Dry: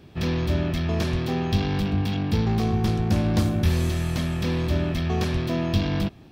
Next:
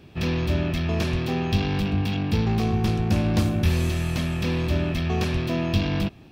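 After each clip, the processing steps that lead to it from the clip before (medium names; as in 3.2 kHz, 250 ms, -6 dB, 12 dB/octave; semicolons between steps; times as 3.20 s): peaking EQ 2.6 kHz +5.5 dB 0.29 oct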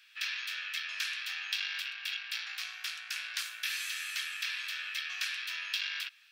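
Chebyshev high-pass 1.5 kHz, order 4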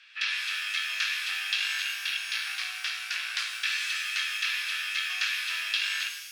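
distance through air 94 m; pitch-shifted reverb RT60 1.1 s, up +12 st, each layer -8 dB, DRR 5 dB; trim +7 dB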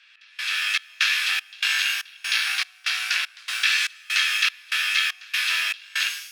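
level rider gain up to 9 dB; trance gate "xx...xxx" 194 bpm -24 dB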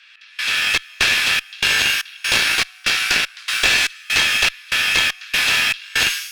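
gain riding 2 s; one-sided clip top -22 dBFS; trim +7 dB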